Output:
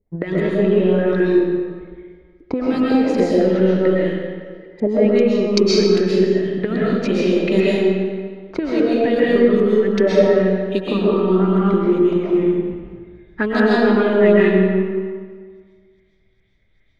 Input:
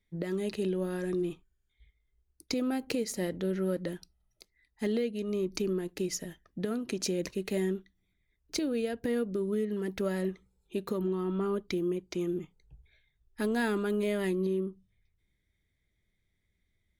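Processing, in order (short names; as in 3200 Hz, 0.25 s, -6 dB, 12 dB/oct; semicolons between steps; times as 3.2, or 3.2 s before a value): transient shaper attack +6 dB, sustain -2 dB; LFO low-pass saw up 2.5 Hz 440–5500 Hz; digital reverb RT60 1.7 s, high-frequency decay 0.75×, pre-delay 90 ms, DRR -6.5 dB; gain +6 dB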